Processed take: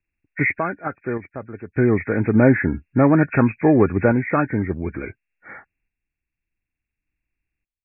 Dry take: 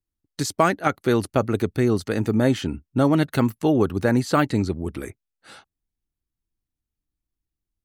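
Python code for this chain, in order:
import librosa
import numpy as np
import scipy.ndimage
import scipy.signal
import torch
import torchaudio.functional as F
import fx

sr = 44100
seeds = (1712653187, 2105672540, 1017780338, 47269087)

y = fx.freq_compress(x, sr, knee_hz=1400.0, ratio=4.0)
y = fx.tremolo_random(y, sr, seeds[0], hz=1.7, depth_pct=90)
y = fx.env_lowpass(y, sr, base_hz=1900.0, full_db=-21.0)
y = y * librosa.db_to_amplitude(5.5)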